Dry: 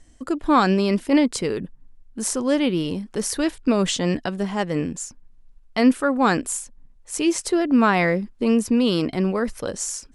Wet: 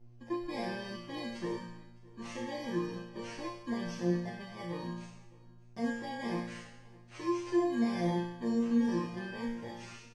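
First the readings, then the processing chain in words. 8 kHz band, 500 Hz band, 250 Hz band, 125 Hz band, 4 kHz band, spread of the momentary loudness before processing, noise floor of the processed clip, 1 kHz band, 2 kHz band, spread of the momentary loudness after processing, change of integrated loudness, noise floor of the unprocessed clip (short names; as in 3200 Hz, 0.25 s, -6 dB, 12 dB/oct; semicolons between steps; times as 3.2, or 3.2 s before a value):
-26.0 dB, -14.5 dB, -13.5 dB, -11.5 dB, -17.0 dB, 11 LU, -55 dBFS, -16.5 dB, -15.5 dB, 16 LU, -14.0 dB, -51 dBFS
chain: FFT order left unsorted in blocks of 32 samples; LPF 6600 Hz 24 dB/oct; high shelf 2400 Hz -9.5 dB; in parallel at +1.5 dB: limiter -19 dBFS, peak gain reduction 11 dB; on the sum: buzz 120 Hz, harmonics 7, -44 dBFS -7 dB/oct; resonator bank A#2 fifth, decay 0.8 s; on a send: echo 0.611 s -23.5 dB; on the sum: AAC 32 kbps 32000 Hz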